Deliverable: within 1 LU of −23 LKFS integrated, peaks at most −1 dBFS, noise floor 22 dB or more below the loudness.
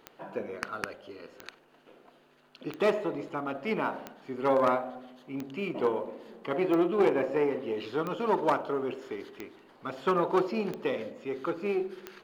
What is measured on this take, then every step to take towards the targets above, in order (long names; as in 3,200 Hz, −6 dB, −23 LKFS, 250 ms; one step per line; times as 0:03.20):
number of clicks 10; integrated loudness −30.5 LKFS; sample peak −16.0 dBFS; target loudness −23.0 LKFS
→ click removal
level +7.5 dB